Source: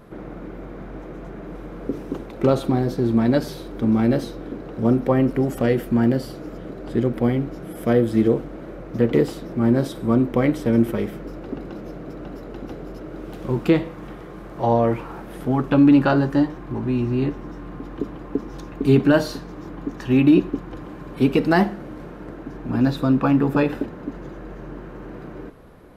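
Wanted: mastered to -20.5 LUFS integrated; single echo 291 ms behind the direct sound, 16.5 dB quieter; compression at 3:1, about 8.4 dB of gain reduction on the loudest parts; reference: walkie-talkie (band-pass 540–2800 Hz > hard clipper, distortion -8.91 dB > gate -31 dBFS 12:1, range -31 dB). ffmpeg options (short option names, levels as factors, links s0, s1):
-af "acompressor=threshold=0.0794:ratio=3,highpass=540,lowpass=2800,aecho=1:1:291:0.15,asoftclip=type=hard:threshold=0.0316,agate=range=0.0282:threshold=0.0282:ratio=12,volume=18.8"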